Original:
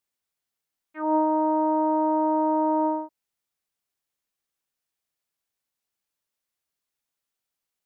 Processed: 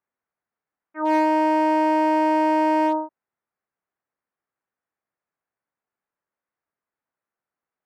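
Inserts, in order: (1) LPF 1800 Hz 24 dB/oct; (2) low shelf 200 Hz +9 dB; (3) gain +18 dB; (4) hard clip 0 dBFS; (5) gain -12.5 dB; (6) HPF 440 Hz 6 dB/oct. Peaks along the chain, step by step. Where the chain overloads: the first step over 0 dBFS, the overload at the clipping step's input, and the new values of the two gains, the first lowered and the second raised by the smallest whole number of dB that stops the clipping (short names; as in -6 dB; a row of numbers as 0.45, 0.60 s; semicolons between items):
-12.5, -12.0, +6.0, 0.0, -12.5, -9.5 dBFS; step 3, 6.0 dB; step 3 +12 dB, step 5 -6.5 dB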